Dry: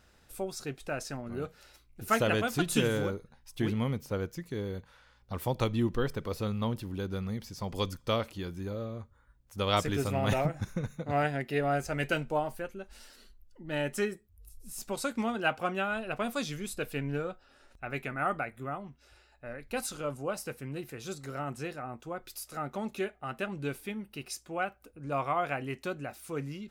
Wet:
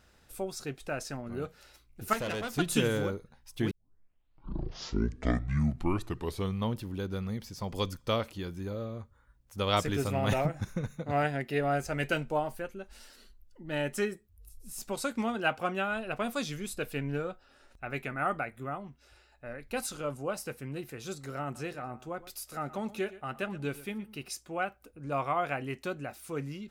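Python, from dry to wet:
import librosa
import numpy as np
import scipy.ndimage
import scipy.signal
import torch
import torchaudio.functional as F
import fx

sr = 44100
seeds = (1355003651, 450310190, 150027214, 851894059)

y = fx.tube_stage(x, sr, drive_db=30.0, bias=0.75, at=(2.13, 2.58))
y = fx.echo_single(y, sr, ms=119, db=-17.0, at=(21.43, 24.29))
y = fx.edit(y, sr, fx.tape_start(start_s=3.71, length_s=3.01), tone=tone)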